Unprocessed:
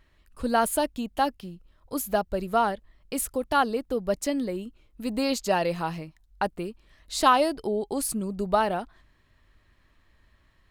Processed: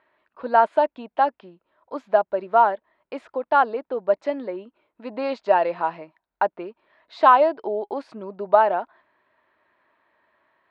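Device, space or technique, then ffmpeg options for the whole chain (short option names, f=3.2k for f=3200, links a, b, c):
phone earpiece: -af "highpass=350,equalizer=f=370:t=q:w=4:g=3,equalizer=f=630:t=q:w=4:g=8,equalizer=f=940:t=q:w=4:g=9,equalizer=f=1.5k:t=q:w=4:g=4,equalizer=f=3k:t=q:w=4:g=-5,lowpass=f=3.2k:w=0.5412,lowpass=f=3.2k:w=1.3066"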